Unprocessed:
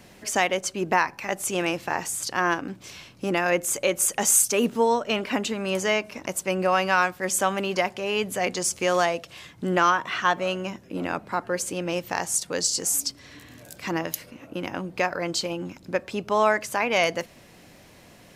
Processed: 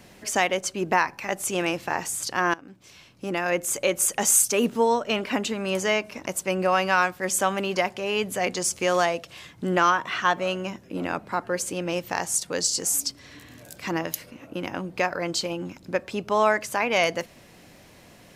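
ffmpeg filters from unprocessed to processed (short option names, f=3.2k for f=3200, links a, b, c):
-filter_complex "[0:a]asplit=2[a][b];[a]atrim=end=2.54,asetpts=PTS-STARTPTS,afade=t=out:st=2.536:d=0.004:c=hsin:silence=0.158489[c];[b]atrim=start=2.54,asetpts=PTS-STARTPTS,afade=t=in:d=1.29:silence=0.158489[d];[c][d]concat=n=2:v=0:a=1"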